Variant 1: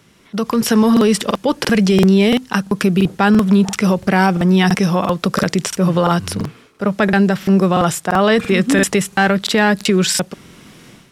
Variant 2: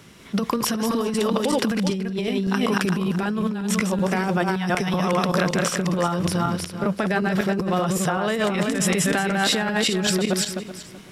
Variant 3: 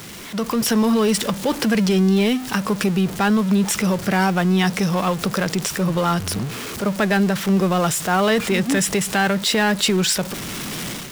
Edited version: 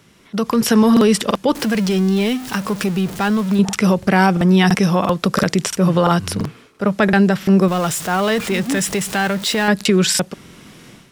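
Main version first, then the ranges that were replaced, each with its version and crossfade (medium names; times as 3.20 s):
1
1.55–3.59 s: from 3
7.68–9.68 s: from 3
not used: 2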